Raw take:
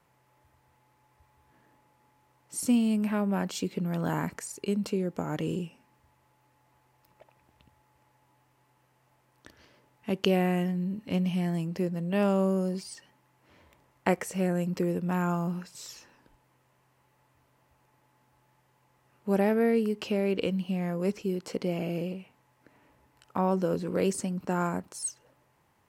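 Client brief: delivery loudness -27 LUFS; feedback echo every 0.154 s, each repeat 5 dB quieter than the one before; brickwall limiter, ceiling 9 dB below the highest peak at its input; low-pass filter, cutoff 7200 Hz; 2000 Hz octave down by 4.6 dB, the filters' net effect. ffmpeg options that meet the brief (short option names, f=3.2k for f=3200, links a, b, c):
-af "lowpass=7.2k,equalizer=f=2k:t=o:g=-6,alimiter=limit=-20.5dB:level=0:latency=1,aecho=1:1:154|308|462|616|770|924|1078:0.562|0.315|0.176|0.0988|0.0553|0.031|0.0173,volume=3dB"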